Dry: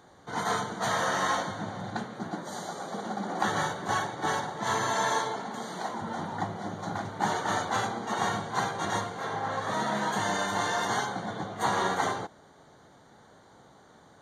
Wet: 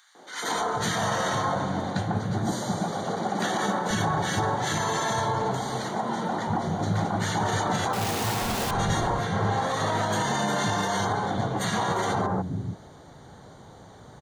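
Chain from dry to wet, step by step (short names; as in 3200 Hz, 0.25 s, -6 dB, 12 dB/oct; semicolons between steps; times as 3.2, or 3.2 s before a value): 7.93–8.71 infinite clipping; three bands offset in time highs, mids, lows 0.15/0.48 s, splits 250/1500 Hz; limiter -25 dBFS, peak gain reduction 10.5 dB; low shelf 210 Hz +10 dB; gain +6.5 dB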